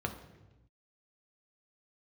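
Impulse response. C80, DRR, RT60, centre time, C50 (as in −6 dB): 12.0 dB, 3.5 dB, 1.0 s, 16 ms, 9.5 dB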